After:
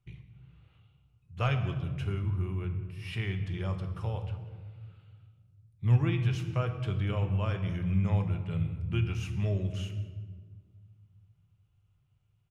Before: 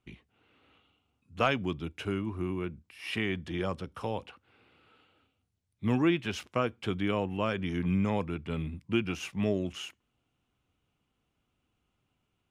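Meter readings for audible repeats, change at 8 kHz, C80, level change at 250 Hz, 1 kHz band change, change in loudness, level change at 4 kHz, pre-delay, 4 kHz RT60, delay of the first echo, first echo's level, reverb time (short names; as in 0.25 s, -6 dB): 1, n/a, 10.5 dB, -5.0 dB, -5.5 dB, +0.5 dB, -5.5 dB, 5 ms, 0.95 s, 0.188 s, -21.0 dB, 1.6 s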